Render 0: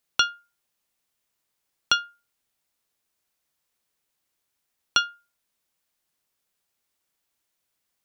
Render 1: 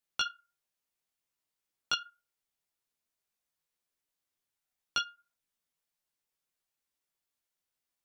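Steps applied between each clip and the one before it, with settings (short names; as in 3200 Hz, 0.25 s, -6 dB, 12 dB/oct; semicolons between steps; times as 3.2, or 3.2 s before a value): chorus voices 4, 0.71 Hz, delay 16 ms, depth 4.3 ms; gain -6.5 dB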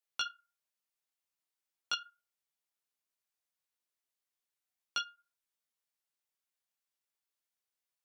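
low shelf 320 Hz -9.5 dB; gain -3.5 dB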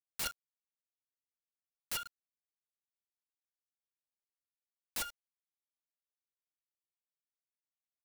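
wrapped overs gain 36.5 dB; bit-crush 9-bit; gain +6 dB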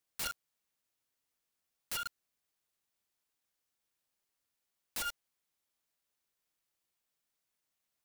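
limiter -41.5 dBFS, peak gain reduction 11.5 dB; gain +10.5 dB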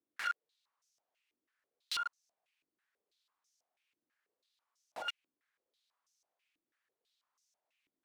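in parallel at -2 dB: compressor, threshold -45 dBFS, peak gain reduction 10.5 dB; on the sum: stepped band-pass 6.1 Hz 300–5900 Hz; gain +9.5 dB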